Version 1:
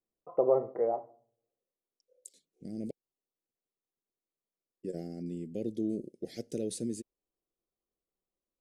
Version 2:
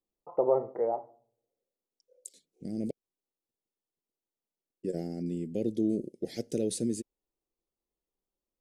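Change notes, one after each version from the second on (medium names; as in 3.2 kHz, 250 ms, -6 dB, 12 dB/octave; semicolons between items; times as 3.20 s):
second voice +4.5 dB; master: remove Butterworth band-stop 880 Hz, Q 7.3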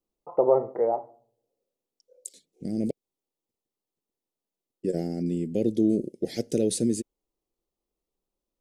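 first voice +5.0 dB; second voice +6.0 dB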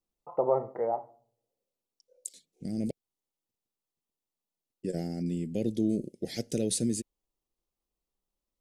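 master: add peaking EQ 390 Hz -7.5 dB 1.6 oct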